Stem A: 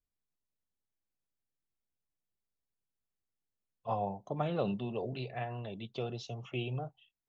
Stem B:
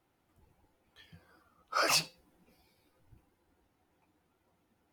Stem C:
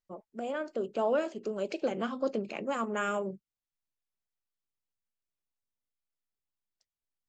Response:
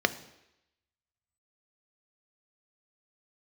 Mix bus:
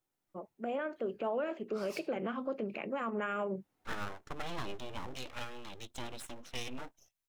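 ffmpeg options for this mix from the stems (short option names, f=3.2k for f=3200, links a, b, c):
-filter_complex "[0:a]aeval=exprs='abs(val(0))':c=same,highshelf=f=2k:g=9.5,bandreject=f=4.6k:w=17,volume=-3.5dB,asplit=2[a][b];[1:a]highpass=110,asoftclip=type=tanh:threshold=-30dB,volume=-3.5dB,afade=t=in:st=3.43:d=0.4:silence=0.281838[c];[2:a]highshelf=f=3.6k:t=q:w=1.5:g=-13.5,adelay=250,volume=-0.5dB[d];[b]apad=whole_len=217261[e];[c][e]sidechaincompress=threshold=-44dB:ratio=8:attack=16:release=313[f];[a][f][d]amix=inputs=3:normalize=0,alimiter=level_in=2.5dB:limit=-24dB:level=0:latency=1:release=89,volume=-2.5dB"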